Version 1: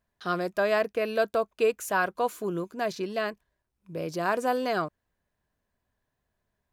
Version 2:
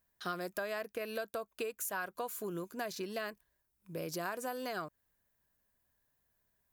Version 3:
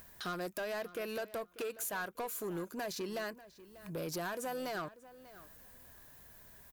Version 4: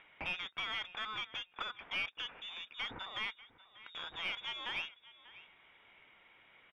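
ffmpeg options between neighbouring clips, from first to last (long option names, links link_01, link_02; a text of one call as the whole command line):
ffmpeg -i in.wav -af "aemphasis=mode=production:type=50fm,acompressor=threshold=-31dB:ratio=10,equalizer=frequency=1600:width_type=o:width=0.85:gain=3,volume=-4.5dB" out.wav
ffmpeg -i in.wav -filter_complex "[0:a]acompressor=mode=upward:threshold=-44dB:ratio=2.5,asoftclip=type=tanh:threshold=-37dB,asplit=2[link_01][link_02];[link_02]adelay=591,lowpass=frequency=4300:poles=1,volume=-17dB,asplit=2[link_03][link_04];[link_04]adelay=591,lowpass=frequency=4300:poles=1,volume=0.16[link_05];[link_01][link_03][link_05]amix=inputs=3:normalize=0,volume=3.5dB" out.wav
ffmpeg -i in.wav -af "aderivative,lowpass=frequency=3300:width_type=q:width=0.5098,lowpass=frequency=3300:width_type=q:width=0.6013,lowpass=frequency=3300:width_type=q:width=0.9,lowpass=frequency=3300:width_type=q:width=2.563,afreqshift=-3900,aeval=exprs='0.00708*(cos(1*acos(clip(val(0)/0.00708,-1,1)))-cos(1*PI/2))+0.000282*(cos(4*acos(clip(val(0)/0.00708,-1,1)))-cos(4*PI/2))':channel_layout=same,volume=16.5dB" out.wav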